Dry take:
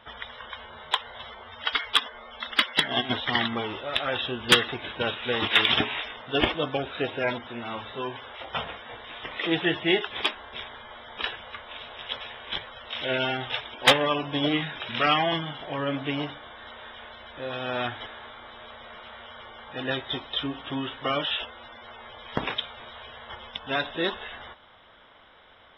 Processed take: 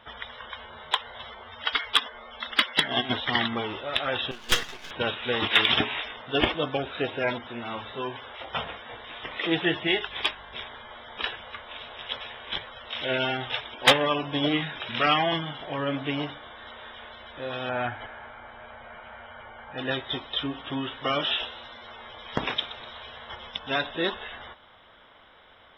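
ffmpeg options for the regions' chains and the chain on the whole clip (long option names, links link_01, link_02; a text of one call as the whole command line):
ffmpeg -i in.wav -filter_complex "[0:a]asettb=1/sr,asplit=3[link_01][link_02][link_03];[link_01]atrim=end=4.314[link_04];[link_02]atrim=start=4.31:end=4.91,asetpts=PTS-STARTPTS,afade=type=in:duration=0.004:curve=qsin,afade=type=out:start_time=0.596:duration=0.004:curve=qsin,highpass=frequency=700:poles=1,aeval=exprs='max(val(0),0)':channel_layout=same[link_05];[link_03]atrim=start=4.906[link_06];[link_04][link_05]acrossfade=duration=0.004:curve1=hsin:curve2=qsin[link_07];[link_07][link_06]acrossfade=duration=0.004:curve1=qsin:curve2=hsin,asettb=1/sr,asplit=3[link_08][link_09][link_10];[link_08]atrim=end=9.874[link_11];[link_09]atrim=start=9.87:end=10.54,asetpts=PTS-STARTPTS,afade=type=in:duration=0.004:curve=qsin,afade=type=out:start_time=0.666:duration=0.004:curve=qsin,equalizer=frequency=200:width_type=o:width=2.9:gain=-6,bandreject=frequency=1300:width=24,aeval=exprs='val(0)+0.002*(sin(2*PI*50*n/s)+sin(2*PI*2*50*n/s)/2+sin(2*PI*3*50*n/s)/3+sin(2*PI*4*50*n/s)/4+sin(2*PI*5*50*n/s)/5)':channel_layout=same[link_12];[link_10]atrim=start=10.536[link_13];[link_11][link_12]acrossfade=duration=0.004:curve1=hsin:curve2=qsin[link_14];[link_14][link_13]acrossfade=duration=0.004:curve1=qsin:curve2=hsin,asettb=1/sr,asplit=3[link_15][link_16][link_17];[link_15]atrim=end=17.694[link_18];[link_16]atrim=start=17.69:end=19.78,asetpts=PTS-STARTPTS,afade=type=in:duration=0.004:curve=qsin,afade=type=out:start_time=2.086:duration=0.004:curve=qsin,lowpass=frequency=2500:width=0.5412,lowpass=frequency=2500:width=1.3066,aecho=1:1:1.3:0.32,atrim=end_sample=92169[link_19];[link_17]atrim=start=19.776[link_20];[link_18][link_19]acrossfade=duration=0.004:curve1=hsin:curve2=qsin[link_21];[link_21][link_20]acrossfade=duration=0.004:curve1=qsin:curve2=hsin,asettb=1/sr,asplit=3[link_22][link_23][link_24];[link_22]atrim=end=20.954[link_25];[link_23]atrim=start=20.95:end=23.78,asetpts=PTS-STARTPTS,afade=type=in:duration=0.004:curve=qsin,afade=type=out:start_time=2.826:duration=0.004:curve=qsin,lowpass=frequency=7000:width_type=q:width=3,asplit=5[link_26][link_27][link_28][link_29][link_30];[link_27]adelay=124,afreqshift=96,volume=-15dB[link_31];[link_28]adelay=248,afreqshift=192,volume=-21.6dB[link_32];[link_29]adelay=372,afreqshift=288,volume=-28.1dB[link_33];[link_30]adelay=496,afreqshift=384,volume=-34.7dB[link_34];[link_26][link_31][link_32][link_33][link_34]amix=inputs=5:normalize=0,atrim=end_sample=124803[link_35];[link_24]atrim=start=23.776[link_36];[link_25][link_35]acrossfade=duration=0.004:curve1=hsin:curve2=qsin[link_37];[link_37][link_36]acrossfade=duration=0.004:curve1=qsin:curve2=hsin" out.wav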